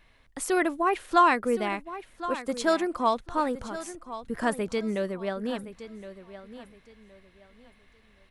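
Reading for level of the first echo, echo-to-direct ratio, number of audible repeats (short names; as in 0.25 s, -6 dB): -13.5 dB, -13.0 dB, 2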